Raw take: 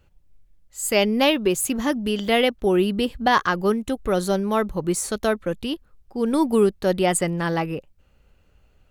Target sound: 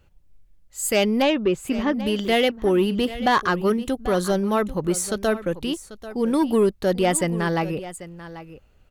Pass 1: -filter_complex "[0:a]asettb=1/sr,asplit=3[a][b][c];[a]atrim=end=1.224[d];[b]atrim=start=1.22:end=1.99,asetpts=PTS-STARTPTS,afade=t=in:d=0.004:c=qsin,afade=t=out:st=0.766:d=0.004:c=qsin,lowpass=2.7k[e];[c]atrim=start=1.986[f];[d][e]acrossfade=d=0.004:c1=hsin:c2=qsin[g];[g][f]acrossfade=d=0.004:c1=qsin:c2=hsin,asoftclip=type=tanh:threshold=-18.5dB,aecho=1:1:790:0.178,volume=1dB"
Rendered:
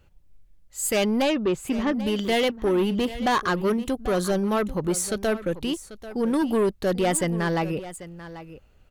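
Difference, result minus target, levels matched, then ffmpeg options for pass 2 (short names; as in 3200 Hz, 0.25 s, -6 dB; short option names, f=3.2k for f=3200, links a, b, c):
soft clip: distortion +8 dB
-filter_complex "[0:a]asettb=1/sr,asplit=3[a][b][c];[a]atrim=end=1.224[d];[b]atrim=start=1.22:end=1.99,asetpts=PTS-STARTPTS,afade=t=in:d=0.004:c=qsin,afade=t=out:st=0.766:d=0.004:c=qsin,lowpass=2.7k[e];[c]atrim=start=1.986[f];[d][e]acrossfade=d=0.004:c1=hsin:c2=qsin[g];[g][f]acrossfade=d=0.004:c1=qsin:c2=hsin,asoftclip=type=tanh:threshold=-11.5dB,aecho=1:1:790:0.178,volume=1dB"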